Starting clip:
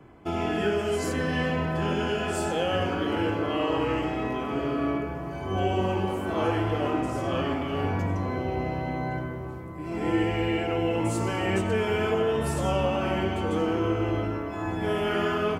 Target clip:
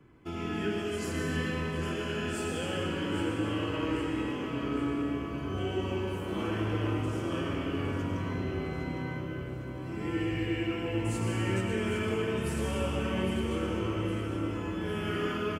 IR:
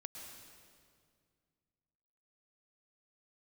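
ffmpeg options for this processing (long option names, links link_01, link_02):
-filter_complex "[0:a]equalizer=frequency=710:width_type=o:width=0.84:gain=-11,aecho=1:1:808|1616|2424|3232|4040|4848:0.335|0.178|0.0941|0.0499|0.0264|0.014[link_01];[1:a]atrim=start_sample=2205[link_02];[link_01][link_02]afir=irnorm=-1:irlink=0"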